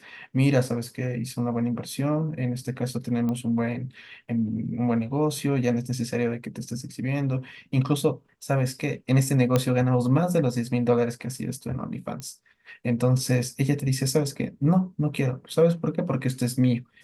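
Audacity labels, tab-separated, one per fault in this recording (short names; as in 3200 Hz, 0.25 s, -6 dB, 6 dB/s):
3.290000	3.290000	pop -19 dBFS
9.560000	9.560000	pop -8 dBFS
12.200000	12.200000	pop -22 dBFS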